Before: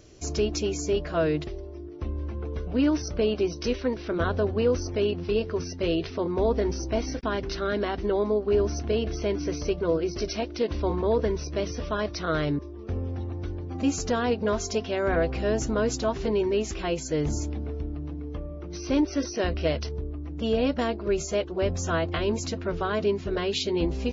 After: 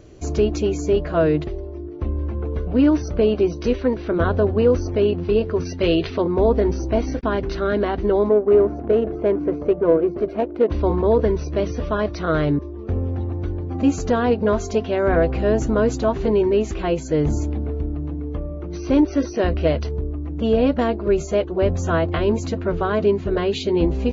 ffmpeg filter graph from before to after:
ffmpeg -i in.wav -filter_complex "[0:a]asettb=1/sr,asplit=3[link_01][link_02][link_03];[link_01]atrim=end=5.654[link_04];[link_02]atrim=start=5.65:end=6.22,asetpts=PTS-STARTPTS,afade=type=in:duration=0.004:curve=qsin,afade=type=out:start_time=0.566:duration=0.004:curve=qsin,lowpass=4800,highshelf=frequency=2100:gain=11.5[link_05];[link_03]atrim=start=6.216[link_06];[link_04][link_05]acrossfade=duration=0.004:curve1=hsin:curve2=qsin[link_07];[link_07][link_06]acrossfade=duration=0.004:curve1=qsin:curve2=hsin,asettb=1/sr,asplit=3[link_08][link_09][link_10];[link_08]atrim=end=8.294[link_11];[link_09]atrim=start=8.29:end=10.7,asetpts=PTS-STARTPTS,afade=type=in:duration=0.004:curve=qsin,afade=type=out:start_time=2.406:duration=0.004:curve=qsin,highpass=frequency=230:poles=1,equalizer=frequency=540:width=0.56:gain=3.5,adynamicsmooth=sensitivity=1:basefreq=1100[link_12];[link_10]atrim=start=10.696[link_13];[link_11][link_12]acrossfade=duration=0.004:curve1=hsin:curve2=qsin[link_14];[link_14][link_13]acrossfade=duration=0.004:curve1=qsin:curve2=hsin,highshelf=frequency=2300:gain=-11,bandreject=frequency=5300:width=8.7,volume=7.5dB" out.wav

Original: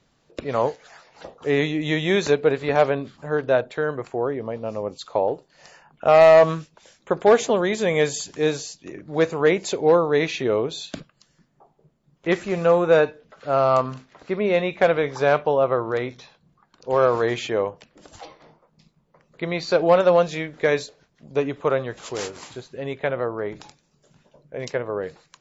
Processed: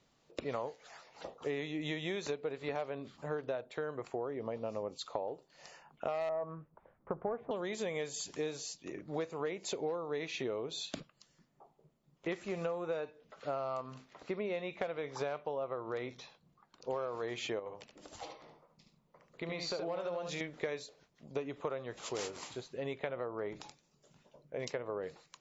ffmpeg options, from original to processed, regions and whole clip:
ffmpeg -i in.wav -filter_complex "[0:a]asettb=1/sr,asplit=3[link_01][link_02][link_03];[link_01]atrim=end=6.294[link_04];[link_02]atrim=start=6.29:end=7.51,asetpts=PTS-STARTPTS,afade=type=in:duration=0.004:curve=qsin,afade=type=out:start_time=1.216:duration=0.004:curve=qsin,lowpass=frequency=1400:width=0.5412,lowpass=frequency=1400:width=1.3066,asubboost=boost=9:cutoff=160[link_05];[link_03]atrim=start=7.506[link_06];[link_04][link_05]acrossfade=duration=0.004:curve1=hsin:curve2=qsin[link_07];[link_07][link_06]acrossfade=duration=0.004:curve1=qsin:curve2=hsin,asettb=1/sr,asplit=3[link_08][link_09][link_10];[link_08]atrim=end=17.594[link_11];[link_09]atrim=start=17.59:end=20.41,asetpts=PTS-STARTPTS,afade=type=in:duration=0.004:curve=qsin,afade=type=out:start_time=2.816:duration=0.004:curve=qsin,acompressor=threshold=-29dB:ratio=3:attack=3.2:release=140:knee=1:detection=peak,aecho=1:1:73:0.473,atrim=end_sample=124362[link_12];[link_10]atrim=start=20.406[link_13];[link_11][link_12]acrossfade=duration=0.004:curve1=hsin:curve2=qsin[link_14];[link_14][link_13]acrossfade=duration=0.004:curve1=qsin:curve2=hsin,lowshelf=frequency=200:gain=-5.5,acompressor=threshold=-28dB:ratio=12,equalizer=frequency=1600:width_type=o:width=0.29:gain=-4.5,volume=-5.5dB" out.wav

